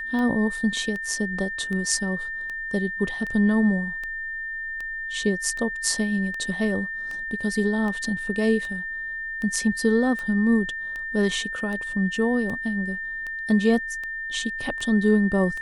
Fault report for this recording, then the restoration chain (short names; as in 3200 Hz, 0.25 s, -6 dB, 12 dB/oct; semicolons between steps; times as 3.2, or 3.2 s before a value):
tick 78 rpm -21 dBFS
tone 1800 Hz -29 dBFS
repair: de-click; notch 1800 Hz, Q 30